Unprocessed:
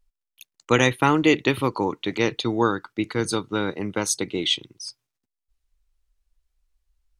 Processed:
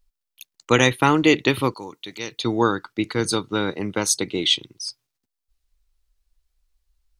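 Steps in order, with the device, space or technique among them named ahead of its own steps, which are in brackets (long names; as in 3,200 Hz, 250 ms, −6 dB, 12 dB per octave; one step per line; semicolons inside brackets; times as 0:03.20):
0:01.74–0:02.41: first-order pre-emphasis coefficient 0.8
presence and air boost (parametric band 4,400 Hz +3.5 dB 0.77 octaves; high-shelf EQ 11,000 Hz +5 dB)
level +1.5 dB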